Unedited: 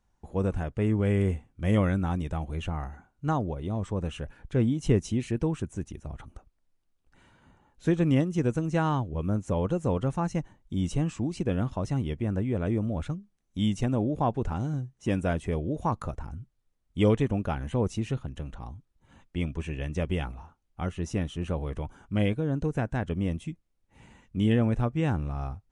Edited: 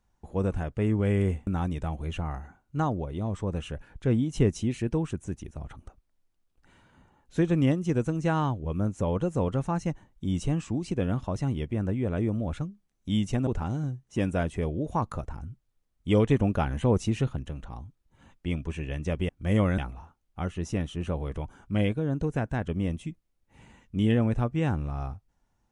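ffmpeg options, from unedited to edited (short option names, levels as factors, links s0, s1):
-filter_complex "[0:a]asplit=7[s0][s1][s2][s3][s4][s5][s6];[s0]atrim=end=1.472[s7];[s1]atrim=start=1.958:end=13.962[s8];[s2]atrim=start=14.368:end=17.202[s9];[s3]atrim=start=17.198:end=18.332,asetpts=PTS-STARTPTS,volume=1.5[s10];[s4]atrim=start=18.328:end=20.192[s11];[s5]atrim=start=1.468:end=1.962[s12];[s6]atrim=start=20.188[s13];[s7][s8]acrossfade=d=0.004:c1=hsin:c2=hsin[s14];[s14][s9]acrossfade=d=0.004:c1=hsin:c2=hsin[s15];[s15][s10]acrossfade=d=0.004:c1=hsin:c2=hsin[s16];[s16][s11]acrossfade=d=0.004:c1=hsin:c2=hsin[s17];[s17][s12]acrossfade=d=0.004:c1=hsin:c2=hsin[s18];[s18][s13]acrossfade=d=0.004:c1=hsin:c2=hsin"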